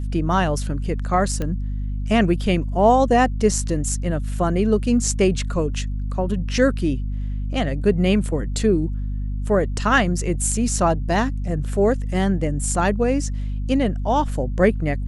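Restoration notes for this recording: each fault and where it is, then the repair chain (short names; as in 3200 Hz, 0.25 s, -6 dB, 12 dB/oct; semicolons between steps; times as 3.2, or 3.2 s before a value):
hum 50 Hz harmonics 5 -25 dBFS
1.42 pop -14 dBFS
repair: de-click; de-hum 50 Hz, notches 5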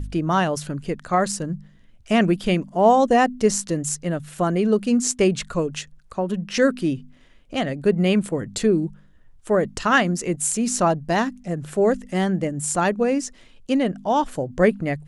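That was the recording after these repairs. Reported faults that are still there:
none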